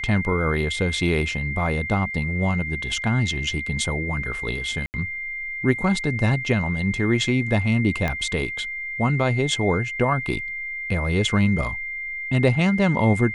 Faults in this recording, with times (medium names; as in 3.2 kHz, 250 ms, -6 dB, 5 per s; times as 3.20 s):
whine 2.1 kHz -28 dBFS
4.86–4.94 s: dropout 79 ms
8.08 s: pop -12 dBFS